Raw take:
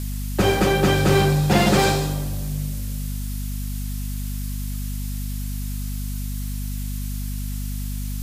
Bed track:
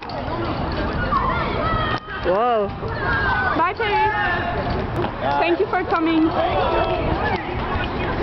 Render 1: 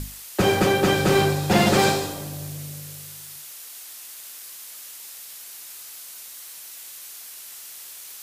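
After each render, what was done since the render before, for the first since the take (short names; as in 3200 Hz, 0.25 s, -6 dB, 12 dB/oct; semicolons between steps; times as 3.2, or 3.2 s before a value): notches 50/100/150/200/250/300 Hz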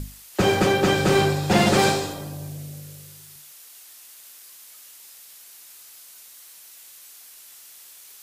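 noise print and reduce 6 dB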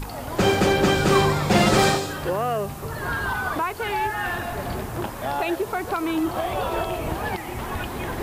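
add bed track -6.5 dB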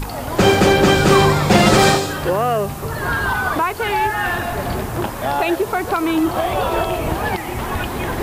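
gain +6.5 dB; limiter -2 dBFS, peak gain reduction 2.5 dB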